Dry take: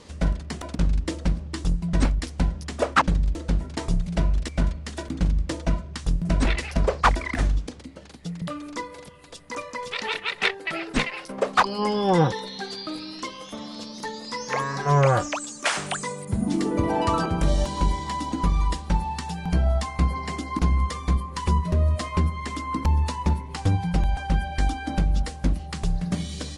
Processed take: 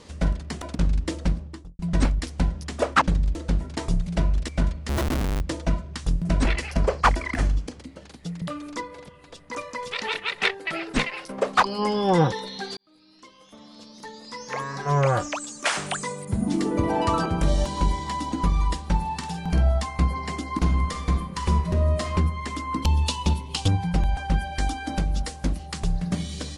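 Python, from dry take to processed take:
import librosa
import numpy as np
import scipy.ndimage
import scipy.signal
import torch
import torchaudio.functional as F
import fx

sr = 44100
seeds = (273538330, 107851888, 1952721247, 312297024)

y = fx.studio_fade_out(x, sr, start_s=1.28, length_s=0.51)
y = fx.schmitt(y, sr, flips_db=-33.5, at=(4.89, 5.41))
y = fx.notch(y, sr, hz=3700.0, q=12.0, at=(6.44, 7.83))
y = fx.lowpass(y, sr, hz=3800.0, slope=6, at=(8.8, 9.53))
y = fx.doubler(y, sr, ms=48.0, db=-8.0, at=(19.01, 19.69), fade=0.02)
y = fx.reverb_throw(y, sr, start_s=20.56, length_s=1.51, rt60_s=0.84, drr_db=5.5)
y = fx.high_shelf_res(y, sr, hz=2400.0, db=7.0, q=3.0, at=(22.82, 23.68))
y = fx.bass_treble(y, sr, bass_db=-3, treble_db=4, at=(24.38, 25.8))
y = fx.edit(y, sr, fx.fade_in_span(start_s=12.77, length_s=2.97), tone=tone)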